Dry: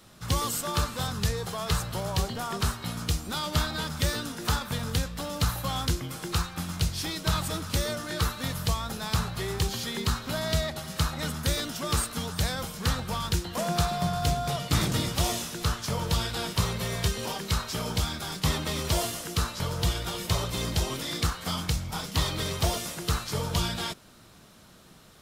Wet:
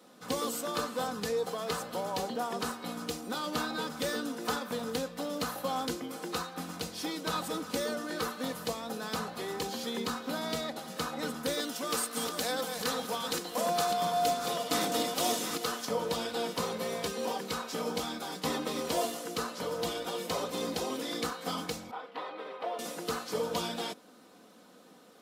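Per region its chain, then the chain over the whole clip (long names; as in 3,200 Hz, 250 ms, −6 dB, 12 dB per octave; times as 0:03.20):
0:11.60–0:15.85: delay that plays each chunk backwards 506 ms, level −6 dB + spectral tilt +1.5 dB per octave
0:21.91–0:22.79: high-pass filter 570 Hz + high-frequency loss of the air 500 metres
whole clip: high-pass filter 230 Hz 12 dB per octave; parametric band 420 Hz +10.5 dB 2.5 octaves; comb filter 4 ms, depth 57%; level −8 dB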